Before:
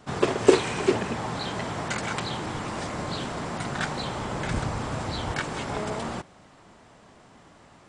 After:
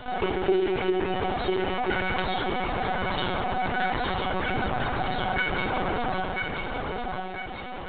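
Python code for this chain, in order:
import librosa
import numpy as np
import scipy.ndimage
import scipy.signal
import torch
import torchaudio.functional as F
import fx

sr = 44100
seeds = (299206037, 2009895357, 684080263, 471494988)

y = fx.highpass(x, sr, hz=110.0, slope=6)
y = fx.rider(y, sr, range_db=3, speed_s=2.0)
y = fx.comb_fb(y, sr, f0_hz=370.0, decay_s=0.22, harmonics='all', damping=0.0, mix_pct=90)
y = fx.dmg_noise_colour(y, sr, seeds[0], colour='violet', level_db=-61.0)
y = fx.echo_feedback(y, sr, ms=995, feedback_pct=24, wet_db=-7.5)
y = fx.room_shoebox(y, sr, seeds[1], volume_m3=3000.0, walls='furnished', distance_m=1.9)
y = fx.lpc_vocoder(y, sr, seeds[2], excitation='pitch_kept', order=16)
y = fx.env_flatten(y, sr, amount_pct=50)
y = y * 10.0 ** (6.0 / 20.0)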